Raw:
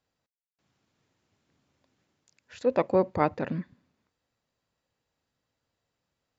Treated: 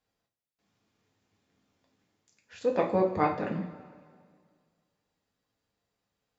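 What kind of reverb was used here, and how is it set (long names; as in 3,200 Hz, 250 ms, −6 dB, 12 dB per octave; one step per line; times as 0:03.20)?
coupled-rooms reverb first 0.38 s, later 2 s, from −16 dB, DRR −0.5 dB
level −4 dB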